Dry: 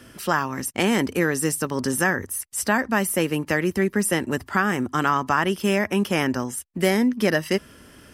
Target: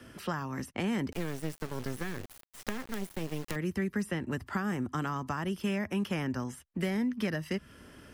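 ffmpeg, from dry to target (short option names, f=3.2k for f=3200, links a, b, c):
-filter_complex "[0:a]highshelf=f=4.2k:g=-7,acrossover=split=210|1000|4400[a][b][c][d];[a]acompressor=threshold=-27dB:ratio=4[e];[b]acompressor=threshold=-35dB:ratio=4[f];[c]acompressor=threshold=-36dB:ratio=4[g];[d]acompressor=threshold=-49dB:ratio=4[h];[e][f][g][h]amix=inputs=4:normalize=0,asettb=1/sr,asplit=3[i][j][k];[i]atrim=end=1.124[l];[j]atrim=start=1.12:end=3.56,asetpts=PTS-STARTPTS,afade=t=in:d=0.004:c=qsin,afade=t=out:st=2.436:d=0.004:c=qsin,acrusher=bits=4:dc=4:mix=0:aa=0.000001[m];[k]atrim=start=3.556[n];[l][m]acrossfade=d=0.004:c1=hsin:c2=qsin[o];[o][n]acrossfade=d=0.004:c1=qsin:c2=hsin,volume=-3.5dB"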